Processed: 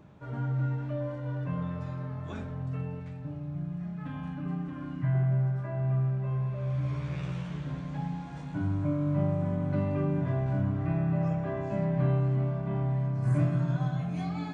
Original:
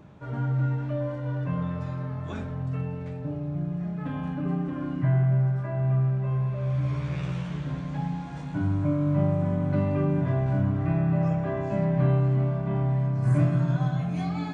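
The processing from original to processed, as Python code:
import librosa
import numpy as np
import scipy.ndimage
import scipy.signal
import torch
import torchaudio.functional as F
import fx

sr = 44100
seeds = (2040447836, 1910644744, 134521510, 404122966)

y = fx.peak_eq(x, sr, hz=450.0, db=-8.5, octaves=1.2, at=(3.0, 5.15))
y = y * librosa.db_to_amplitude(-4.0)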